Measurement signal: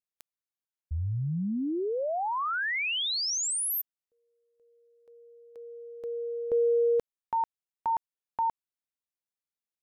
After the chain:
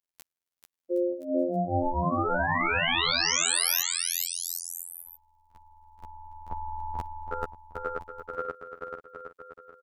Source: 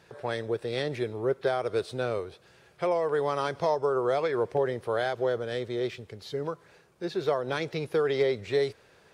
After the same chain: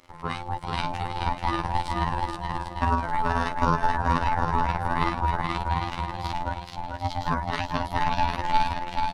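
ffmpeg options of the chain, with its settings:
ffmpeg -i in.wav -af "aecho=1:1:440|770|1018|1203|1342:0.631|0.398|0.251|0.158|0.1,afftfilt=real='hypot(re,im)*cos(PI*b)':imag='0':win_size=2048:overlap=0.75,aeval=exprs='val(0)*sin(2*PI*440*n/s)':channel_layout=same,volume=8dB" out.wav

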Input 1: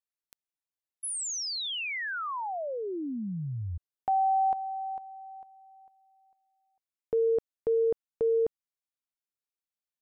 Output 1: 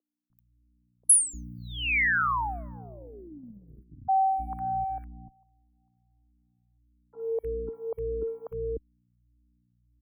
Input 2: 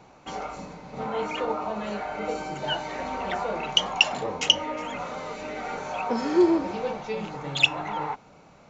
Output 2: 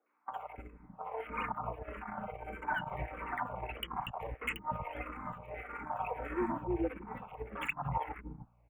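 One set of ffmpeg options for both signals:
ffmpeg -i in.wav -filter_complex "[0:a]equalizer=frequency=1100:width_type=o:width=0.77:gain=6.5,acompressor=threshold=-28dB:ratio=6:attack=0.24:release=127:knee=1:detection=rms,crystalizer=i=4.5:c=0,aeval=exprs='val(0)+0.00794*(sin(2*PI*60*n/s)+sin(2*PI*2*60*n/s)/2+sin(2*PI*3*60*n/s)/3+sin(2*PI*4*60*n/s)/4+sin(2*PI*5*60*n/s)/5)':channel_layout=same,agate=range=-29dB:threshold=-32dB:ratio=16:release=70:detection=peak,asuperstop=centerf=5200:order=8:qfactor=0.65,acrossover=split=390|1400[link_01][link_02][link_03];[link_03]adelay=60[link_04];[link_01]adelay=300[link_05];[link_05][link_02][link_04]amix=inputs=3:normalize=0,asplit=2[link_06][link_07];[link_07]afreqshift=-1.6[link_08];[link_06][link_08]amix=inputs=2:normalize=1,volume=7.5dB" out.wav

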